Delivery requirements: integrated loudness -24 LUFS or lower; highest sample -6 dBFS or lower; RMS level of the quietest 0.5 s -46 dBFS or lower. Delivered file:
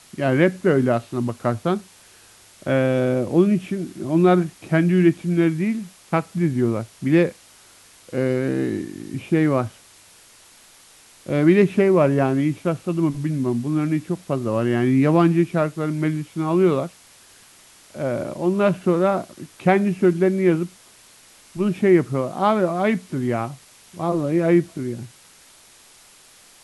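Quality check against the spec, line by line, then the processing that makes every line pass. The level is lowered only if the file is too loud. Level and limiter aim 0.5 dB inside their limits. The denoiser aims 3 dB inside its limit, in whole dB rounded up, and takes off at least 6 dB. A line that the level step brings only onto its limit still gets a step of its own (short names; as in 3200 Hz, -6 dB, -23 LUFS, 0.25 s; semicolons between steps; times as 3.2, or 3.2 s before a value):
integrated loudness -21.0 LUFS: fail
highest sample -4.0 dBFS: fail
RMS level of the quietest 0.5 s -50 dBFS: OK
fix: gain -3.5 dB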